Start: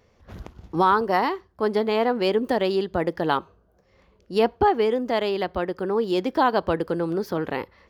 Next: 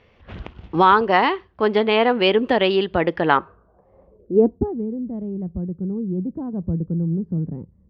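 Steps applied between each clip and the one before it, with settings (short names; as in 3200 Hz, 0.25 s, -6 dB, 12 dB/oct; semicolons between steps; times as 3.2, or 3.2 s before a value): low-pass sweep 2900 Hz -> 170 Hz, 3.14–4.82; gain +4 dB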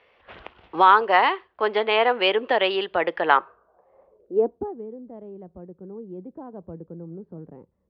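three-band isolator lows -20 dB, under 420 Hz, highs -21 dB, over 4700 Hz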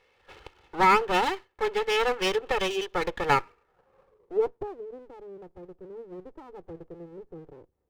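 minimum comb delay 2.3 ms; gain -4 dB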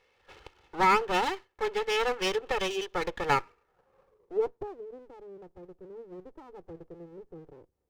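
bell 5900 Hz +2.5 dB; gain -3 dB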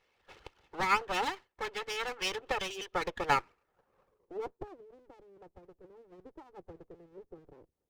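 harmonic-percussive split harmonic -12 dB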